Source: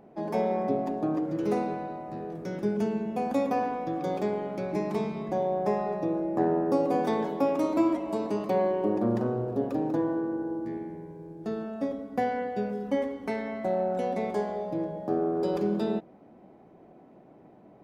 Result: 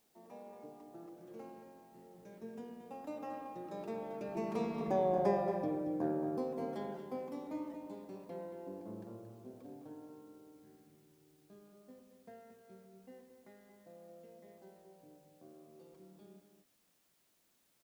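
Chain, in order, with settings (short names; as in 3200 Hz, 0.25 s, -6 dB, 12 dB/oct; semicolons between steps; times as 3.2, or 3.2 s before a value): Doppler pass-by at 5.07, 28 m/s, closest 12 m; requantised 12-bit, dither triangular; outdoor echo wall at 39 m, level -8 dB; gain -3.5 dB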